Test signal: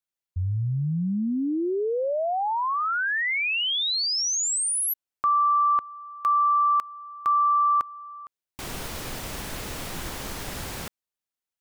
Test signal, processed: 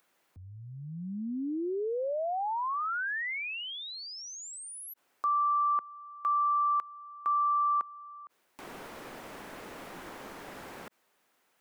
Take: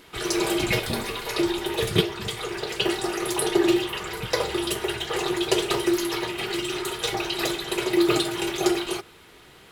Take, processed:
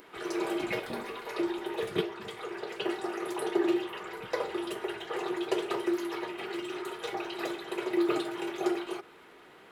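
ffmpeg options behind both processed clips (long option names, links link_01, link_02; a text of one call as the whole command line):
ffmpeg -i in.wav -filter_complex "[0:a]acrossover=split=200 2300:gain=0.126 1 0.251[link_01][link_02][link_03];[link_01][link_02][link_03]amix=inputs=3:normalize=0,acompressor=mode=upward:threshold=-43dB:ratio=2.5:attack=4:release=22:knee=2.83:detection=peak,volume=-6dB" out.wav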